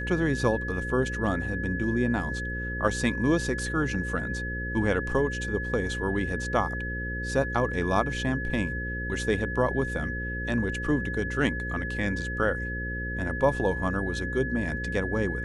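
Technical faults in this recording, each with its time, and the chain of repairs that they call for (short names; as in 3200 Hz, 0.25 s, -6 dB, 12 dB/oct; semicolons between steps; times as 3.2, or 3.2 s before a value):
buzz 60 Hz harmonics 9 -34 dBFS
tone 1700 Hz -33 dBFS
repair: de-hum 60 Hz, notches 9; notch 1700 Hz, Q 30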